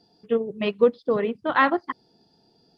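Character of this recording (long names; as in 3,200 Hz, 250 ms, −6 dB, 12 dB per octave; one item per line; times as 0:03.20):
background noise floor −63 dBFS
spectral slope −3.0 dB per octave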